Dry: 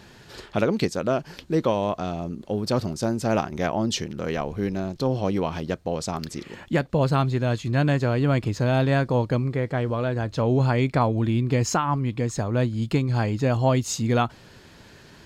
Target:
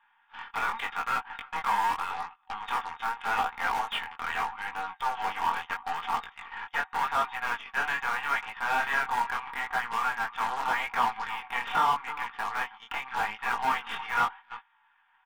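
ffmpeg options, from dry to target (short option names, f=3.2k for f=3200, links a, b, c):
-filter_complex "[0:a]aeval=exprs='(tanh(5.62*val(0)+0.2)-tanh(0.2))/5.62':c=same,highshelf=f=2.4k:g=7,asplit=2[a][b];[b]aecho=0:1:314:0.1[c];[a][c]amix=inputs=2:normalize=0,adynamicsmooth=sensitivity=2.5:basefreq=1k,afftfilt=real='re*between(b*sr/4096,750,3700)':imag='im*between(b*sr/4096,750,3700)':win_size=4096:overlap=0.75,aeval=exprs='0.0316*(cos(1*acos(clip(val(0)/0.0316,-1,1)))-cos(1*PI/2))+0.000447*(cos(2*acos(clip(val(0)/0.0316,-1,1)))-cos(2*PI/2))+0.0112*(cos(5*acos(clip(val(0)/0.0316,-1,1)))-cos(5*PI/2))+0.00501*(cos(7*acos(clip(val(0)/0.0316,-1,1)))-cos(7*PI/2))+0.002*(cos(8*acos(clip(val(0)/0.0316,-1,1)))-cos(8*PI/2))':c=same,agate=range=-16dB:threshold=-47dB:ratio=16:detection=peak,aecho=1:1:4.3:0.5,acrossover=split=2600[d][e];[e]alimiter=level_in=19dB:limit=-24dB:level=0:latency=1:release=200,volume=-19dB[f];[d][f]amix=inputs=2:normalize=0,flanger=delay=17:depth=7.4:speed=0.81,volume=8.5dB"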